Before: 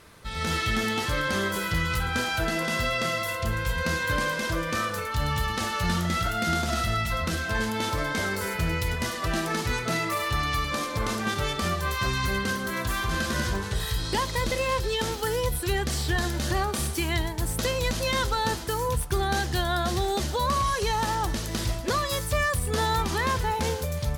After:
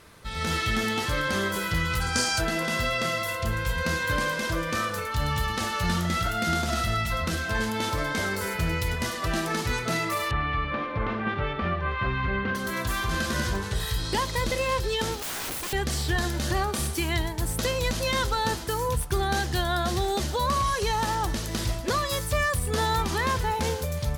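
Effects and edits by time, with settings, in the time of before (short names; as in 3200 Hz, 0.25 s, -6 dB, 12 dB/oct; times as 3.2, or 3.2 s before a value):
2.02–2.41 spectral gain 4300–10000 Hz +11 dB
10.31–12.55 LPF 2700 Hz 24 dB/oct
15.19–15.73 wrapped overs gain 28 dB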